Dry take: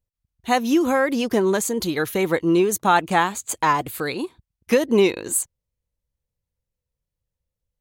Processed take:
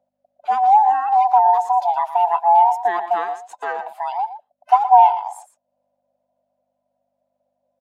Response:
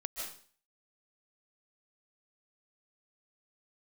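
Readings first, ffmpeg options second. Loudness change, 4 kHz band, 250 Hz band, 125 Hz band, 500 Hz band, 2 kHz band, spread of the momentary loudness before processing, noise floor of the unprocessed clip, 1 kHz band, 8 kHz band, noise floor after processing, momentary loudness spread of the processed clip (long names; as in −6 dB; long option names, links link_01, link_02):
+4.0 dB, below −10 dB, below −25 dB, below −35 dB, −4.5 dB, −8.0 dB, 9 LU, −85 dBFS, +10.5 dB, below −20 dB, −76 dBFS, 15 LU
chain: -filter_complex "[0:a]afftfilt=real='real(if(lt(b,1008),b+24*(1-2*mod(floor(b/24),2)),b),0)':imag='imag(if(lt(b,1008),b+24*(1-2*mod(floor(b/24),2)),b),0)':win_size=2048:overlap=0.75,aemphasis=mode=reproduction:type=75fm,aeval=exprs='val(0)+0.002*(sin(2*PI*50*n/s)+sin(2*PI*2*50*n/s)/2+sin(2*PI*3*50*n/s)/3+sin(2*PI*4*50*n/s)/4+sin(2*PI*5*50*n/s)/5)':channel_layout=same,acompressor=mode=upward:threshold=-31dB:ratio=2.5,highpass=frequency=730:width_type=q:width=8.6,adynamicequalizer=threshold=0.0891:dfrequency=970:dqfactor=3.3:tfrequency=970:tqfactor=3.3:attack=5:release=100:ratio=0.375:range=3.5:mode=boostabove:tftype=bell,asplit=2[link_01][link_02];[link_02]aecho=0:1:117:0.237[link_03];[link_01][link_03]amix=inputs=2:normalize=0,volume=-10.5dB"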